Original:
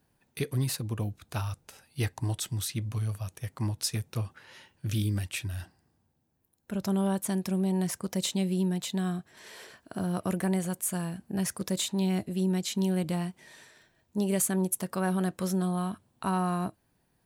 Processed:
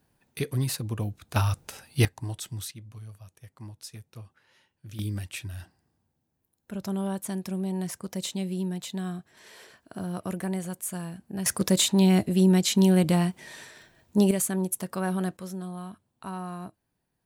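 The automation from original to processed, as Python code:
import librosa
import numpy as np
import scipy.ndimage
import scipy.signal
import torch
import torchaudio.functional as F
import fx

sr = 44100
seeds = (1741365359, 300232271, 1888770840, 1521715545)

y = fx.gain(x, sr, db=fx.steps((0.0, 1.5), (1.36, 8.5), (2.05, -3.5), (2.71, -12.0), (4.99, -2.5), (11.46, 8.0), (14.31, 0.0), (15.37, -7.5)))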